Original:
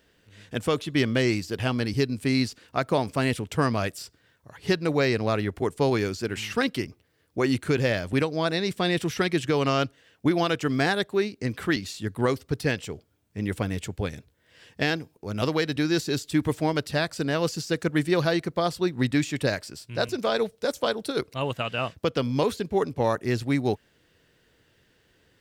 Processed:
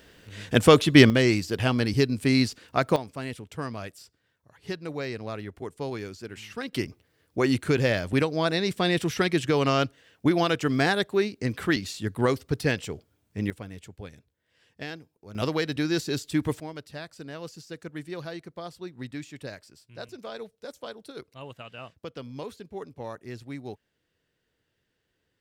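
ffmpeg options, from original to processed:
ffmpeg -i in.wav -af "asetnsamples=nb_out_samples=441:pad=0,asendcmd='1.1 volume volume 2dB;2.96 volume volume -10dB;6.73 volume volume 0.5dB;13.5 volume volume -12dB;15.35 volume volume -2dB;16.6 volume volume -13.5dB',volume=9.5dB" out.wav

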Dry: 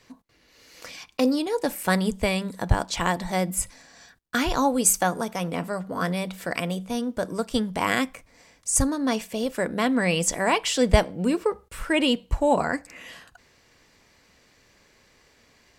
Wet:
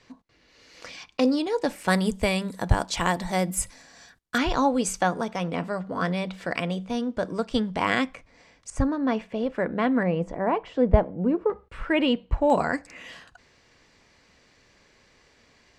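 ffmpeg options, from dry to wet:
ffmpeg -i in.wav -af "asetnsamples=nb_out_samples=441:pad=0,asendcmd='1.88 lowpass f 12000;4.38 lowpass f 4700;8.7 lowpass f 2100;10.03 lowpass f 1000;11.5 lowpass f 2600;12.5 lowpass f 6900',lowpass=5900" out.wav

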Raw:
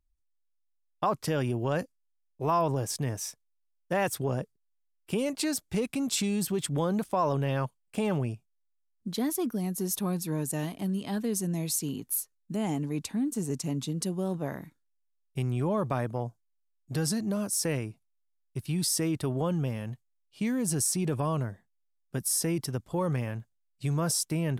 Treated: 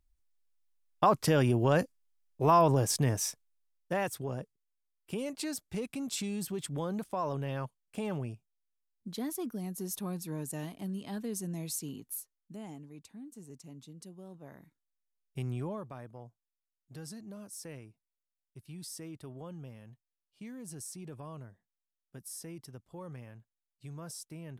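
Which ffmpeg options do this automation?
ffmpeg -i in.wav -af "volume=15.5dB,afade=type=out:start_time=3.24:duration=0.9:silence=0.316228,afade=type=out:start_time=11.76:duration=1.11:silence=0.281838,afade=type=in:start_time=14.4:duration=1.11:silence=0.237137,afade=type=out:start_time=15.51:duration=0.36:silence=0.298538" out.wav

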